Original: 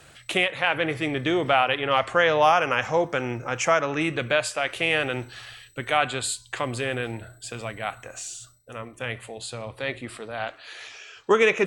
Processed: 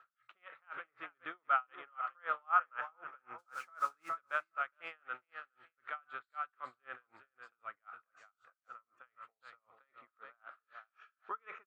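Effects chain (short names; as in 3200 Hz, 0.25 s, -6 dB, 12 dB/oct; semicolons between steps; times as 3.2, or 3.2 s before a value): band-pass 1300 Hz, Q 8.8; 3.38–4.08 added noise violet -44 dBFS; air absorption 94 m; feedback echo 0.414 s, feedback 17%, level -9.5 dB; dB-linear tremolo 3.9 Hz, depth 38 dB; gain +3 dB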